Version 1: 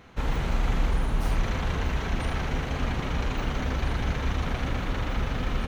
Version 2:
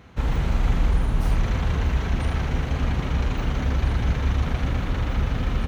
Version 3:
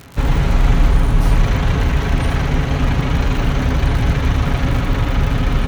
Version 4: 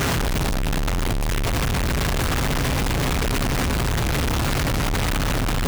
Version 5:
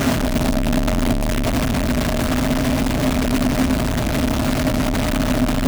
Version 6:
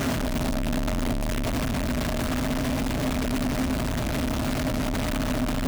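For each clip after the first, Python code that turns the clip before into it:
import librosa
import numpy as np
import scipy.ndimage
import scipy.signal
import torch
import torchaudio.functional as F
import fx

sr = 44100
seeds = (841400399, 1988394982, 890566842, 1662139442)

y1 = scipy.signal.sosfilt(scipy.signal.butter(2, 43.0, 'highpass', fs=sr, output='sos'), x)
y1 = fx.low_shelf(y1, sr, hz=160.0, db=9.0)
y2 = y1 + 0.37 * np.pad(y1, (int(7.2 * sr / 1000.0), 0))[:len(y1)]
y2 = fx.dmg_crackle(y2, sr, seeds[0], per_s=93.0, level_db=-32.0)
y2 = y2 * librosa.db_to_amplitude(8.0)
y3 = np.sign(y2) * np.sqrt(np.mean(np.square(y2)))
y3 = y3 * librosa.db_to_amplitude(-7.0)
y4 = fx.rider(y3, sr, range_db=10, speed_s=0.5)
y4 = fx.small_body(y4, sr, hz=(250.0, 620.0), ring_ms=65, db=14)
y5 = 10.0 ** (-14.5 / 20.0) * np.tanh(y4 / 10.0 ** (-14.5 / 20.0))
y5 = y5 * librosa.db_to_amplitude(-5.5)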